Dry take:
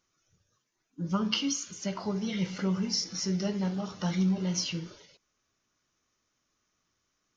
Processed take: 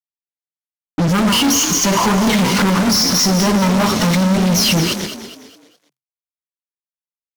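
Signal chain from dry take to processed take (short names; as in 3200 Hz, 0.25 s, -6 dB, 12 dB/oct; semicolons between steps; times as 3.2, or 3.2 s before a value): reverse delay 0.137 s, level -13.5 dB; 1.27–3.88 bell 1000 Hz +14 dB 0.38 oct; compressor, threshold -29 dBFS, peak gain reduction 7 dB; fuzz box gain 48 dB, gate -50 dBFS; frequency-shifting echo 0.207 s, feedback 40%, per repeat +32 Hz, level -10.5 dB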